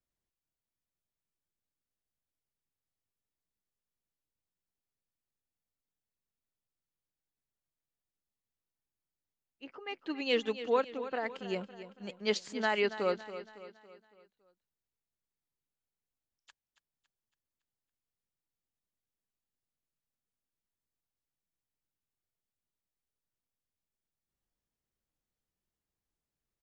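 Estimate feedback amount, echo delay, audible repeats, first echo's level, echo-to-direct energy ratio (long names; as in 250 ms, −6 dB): 47%, 279 ms, 4, −13.0 dB, −12.0 dB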